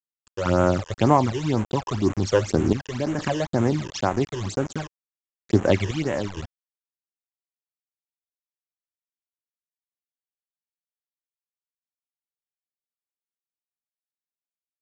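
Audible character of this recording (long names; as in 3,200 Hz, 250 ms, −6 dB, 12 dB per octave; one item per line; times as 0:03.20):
sample-and-hold tremolo 2.2 Hz, depth 90%
a quantiser's noise floor 6 bits, dither none
phaser sweep stages 12, 2 Hz, lowest notch 220–4,700 Hz
mu-law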